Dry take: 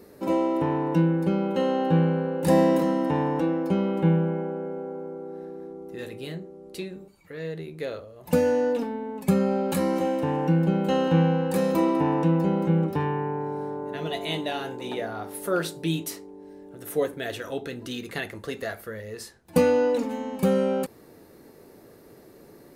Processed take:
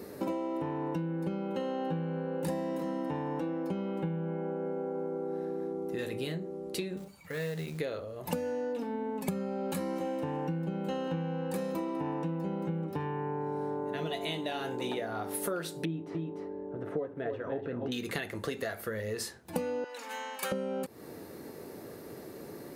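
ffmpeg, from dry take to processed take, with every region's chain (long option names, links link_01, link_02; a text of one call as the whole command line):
ffmpeg -i in.wav -filter_complex "[0:a]asettb=1/sr,asplit=3[link_01][link_02][link_03];[link_01]atrim=end=6.974[link_04];[link_02]atrim=start=6.97:end=7.8,asetpts=PTS-STARTPTS,afade=type=in:duration=0.004:curve=qsin,afade=type=out:start_time=0.826:duration=0.004:curve=qsin,acrusher=bits=5:mode=log:mix=0:aa=0.000001,equalizer=frequency=350:width=3:gain=-12[link_05];[link_03]atrim=start=7.796[link_06];[link_04][link_05]acrossfade=duration=0.004:curve1=hsin:curve2=qsin[link_07];[link_07][link_06]acrossfade=duration=0.004:curve1=qsin:curve2=hsin,asettb=1/sr,asplit=3[link_08][link_09][link_10];[link_08]atrim=end=15.854[link_11];[link_09]atrim=start=15.85:end=17.92,asetpts=PTS-STARTPTS,afade=type=in:duration=0.004:curve=qsin,afade=type=out:start_time=2.066:duration=0.004:curve=qsin,lowpass=1200,aecho=1:1:295:0.376,atrim=end_sample=91287[link_12];[link_10]atrim=start=17.916[link_13];[link_11][link_12]acrossfade=duration=0.004:curve1=hsin:curve2=qsin[link_14];[link_14][link_13]acrossfade=duration=0.004:curve1=qsin:curve2=hsin,asettb=1/sr,asplit=3[link_15][link_16][link_17];[link_15]atrim=end=19.844[link_18];[link_16]atrim=start=19.84:end=20.52,asetpts=PTS-STARTPTS,afade=type=in:duration=0.004:curve=qsin,afade=type=out:start_time=0.676:duration=0.004:curve=qsin,highpass=1200,equalizer=frequency=1600:width=5.1:gain=4[link_19];[link_17]atrim=start=20.516[link_20];[link_18][link_19]acrossfade=duration=0.004:curve1=hsin:curve2=qsin[link_21];[link_21][link_20]acrossfade=duration=0.004:curve1=qsin:curve2=hsin,highpass=71,acompressor=threshold=-36dB:ratio=12,volume=5dB" out.wav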